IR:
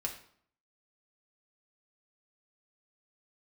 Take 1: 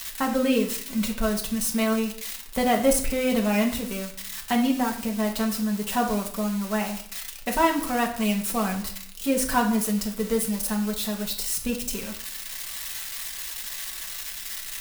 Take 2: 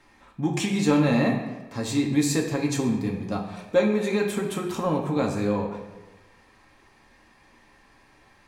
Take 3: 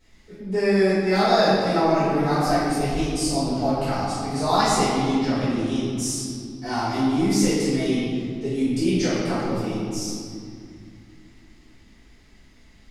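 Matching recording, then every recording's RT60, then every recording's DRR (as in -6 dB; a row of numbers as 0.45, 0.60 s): 1; 0.60, 1.2, 2.4 s; 0.0, -0.5, -14.0 dB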